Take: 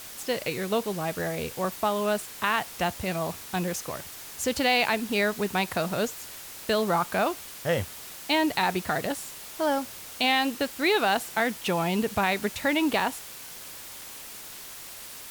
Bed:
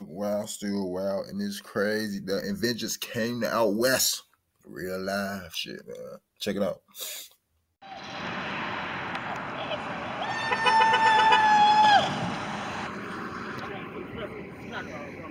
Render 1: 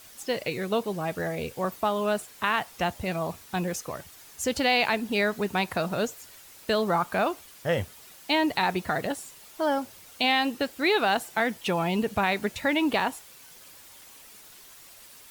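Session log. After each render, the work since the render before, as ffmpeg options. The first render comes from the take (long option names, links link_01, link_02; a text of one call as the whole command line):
ffmpeg -i in.wav -af "afftdn=noise_reduction=9:noise_floor=-42" out.wav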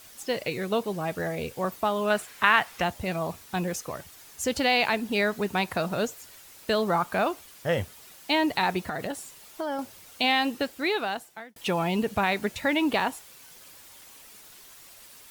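ffmpeg -i in.wav -filter_complex "[0:a]asettb=1/sr,asplit=3[link_01][link_02][link_03];[link_01]atrim=end=2.104[link_04];[link_02]atrim=start=2.1:end=2.82,asetpts=PTS-STARTPTS,afade=type=in:duration=0.004:curve=qsin,afade=type=out:start_time=0.716:duration=0.004:curve=qsin,equalizer=frequency=1800:width=0.7:gain=7.5[link_05];[link_03]atrim=start=2.816[link_06];[link_04][link_05]acrossfade=duration=0.004:curve1=hsin:curve2=qsin[link_07];[link_07][link_06]acrossfade=duration=0.004:curve1=qsin:curve2=hsin,asettb=1/sr,asplit=3[link_08][link_09][link_10];[link_08]atrim=end=8.884[link_11];[link_09]atrim=start=8.88:end=9.79,asetpts=PTS-STARTPTS,afade=type=in:duration=0.004:curve=qsin,afade=type=out:start_time=0.906:duration=0.004:curve=qsin,acompressor=threshold=-27dB:ratio=6:attack=3.2:release=140:knee=1:detection=peak[link_12];[link_10]atrim=start=9.786[link_13];[link_11][link_12]acrossfade=duration=0.004:curve1=hsin:curve2=qsin[link_14];[link_14][link_13]acrossfade=duration=0.004:curve1=qsin:curve2=hsin,asplit=2[link_15][link_16];[link_15]atrim=end=11.56,asetpts=PTS-STARTPTS,afade=type=out:start_time=10.58:duration=0.98[link_17];[link_16]atrim=start=11.56,asetpts=PTS-STARTPTS,afade=type=in:duration=0.004:curve=hsin[link_18];[link_17][link_18]concat=n=2:v=0:a=1" out.wav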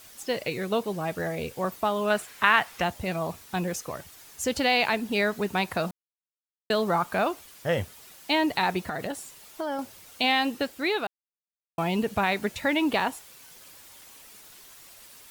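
ffmpeg -i in.wav -filter_complex "[0:a]asplit=5[link_01][link_02][link_03][link_04][link_05];[link_01]atrim=end=5.91,asetpts=PTS-STARTPTS,afade=type=out:start_time=5.906:duration=0.004:curve=hsin[link_06];[link_02]atrim=start=5.91:end=6.7,asetpts=PTS-STARTPTS,volume=0[link_07];[link_03]atrim=start=6.7:end=11.07,asetpts=PTS-STARTPTS,afade=type=in:duration=0.004:curve=hsin,afade=type=out:start_time=4.366:duration=0.004:curve=hsin[link_08];[link_04]atrim=start=11.07:end=11.78,asetpts=PTS-STARTPTS,volume=0[link_09];[link_05]atrim=start=11.78,asetpts=PTS-STARTPTS,afade=type=in:duration=0.004:curve=hsin[link_10];[link_06][link_07][link_08][link_09][link_10]concat=n=5:v=0:a=1" out.wav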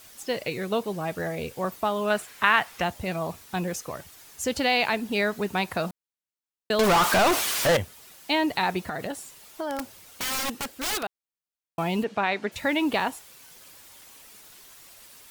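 ffmpeg -i in.wav -filter_complex "[0:a]asettb=1/sr,asplit=3[link_01][link_02][link_03];[link_01]atrim=end=6.794[link_04];[link_02]atrim=start=6.79:end=7.77,asetpts=PTS-STARTPTS,afade=type=in:duration=0.004:curve=qsin,afade=type=out:start_time=0.976:duration=0.004:curve=qsin,asplit=2[link_05][link_06];[link_06]highpass=frequency=720:poles=1,volume=35dB,asoftclip=type=tanh:threshold=-14dB[link_07];[link_05][link_07]amix=inputs=2:normalize=0,lowpass=frequency=7900:poles=1,volume=-6dB[link_08];[link_03]atrim=start=7.766[link_09];[link_04][link_08]acrossfade=duration=0.004:curve1=hsin:curve2=qsin[link_10];[link_10][link_09]acrossfade=duration=0.004:curve1=qsin:curve2=hsin,asettb=1/sr,asplit=3[link_11][link_12][link_13];[link_11]atrim=end=9.704[link_14];[link_12]atrim=start=9.7:end=11.03,asetpts=PTS-STARTPTS,afade=type=in:duration=0.004:curve=qsin,afade=type=out:start_time=1.326:duration=0.004:curve=qsin,aeval=exprs='(mod(15*val(0)+1,2)-1)/15':channel_layout=same[link_15];[link_13]atrim=start=11.026[link_16];[link_14][link_15]acrossfade=duration=0.004:curve1=hsin:curve2=qsin[link_17];[link_17][link_16]acrossfade=duration=0.004:curve1=qsin:curve2=hsin,asplit=3[link_18][link_19][link_20];[link_18]afade=type=out:start_time=12.03:duration=0.02[link_21];[link_19]highpass=230,lowpass=4600,afade=type=in:start_time=12.03:duration=0.02,afade=type=out:start_time=12.51:duration=0.02[link_22];[link_20]afade=type=in:start_time=12.51:duration=0.02[link_23];[link_21][link_22][link_23]amix=inputs=3:normalize=0" out.wav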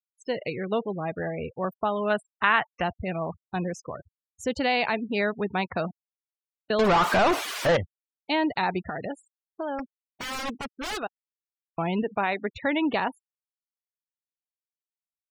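ffmpeg -i in.wav -af "afftfilt=real='re*gte(hypot(re,im),0.0251)':imag='im*gte(hypot(re,im),0.0251)':win_size=1024:overlap=0.75,lowpass=frequency=2800:poles=1" out.wav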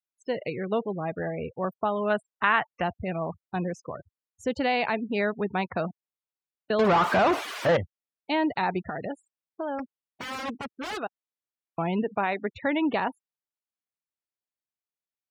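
ffmpeg -i in.wav -af "highpass=75,highshelf=frequency=3800:gain=-9" out.wav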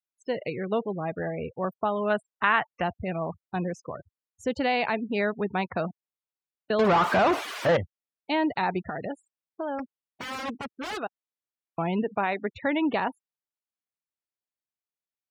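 ffmpeg -i in.wav -af anull out.wav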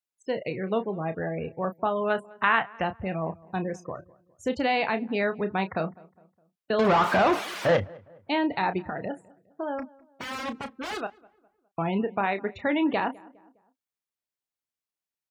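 ffmpeg -i in.wav -filter_complex "[0:a]asplit=2[link_01][link_02];[link_02]adelay=31,volume=-10.5dB[link_03];[link_01][link_03]amix=inputs=2:normalize=0,asplit=2[link_04][link_05];[link_05]adelay=205,lowpass=frequency=1500:poles=1,volume=-22.5dB,asplit=2[link_06][link_07];[link_07]adelay=205,lowpass=frequency=1500:poles=1,volume=0.45,asplit=2[link_08][link_09];[link_09]adelay=205,lowpass=frequency=1500:poles=1,volume=0.45[link_10];[link_04][link_06][link_08][link_10]amix=inputs=4:normalize=0" out.wav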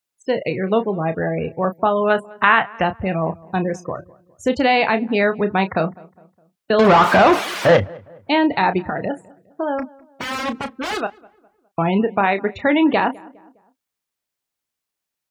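ffmpeg -i in.wav -af "volume=9dB,alimiter=limit=-1dB:level=0:latency=1" out.wav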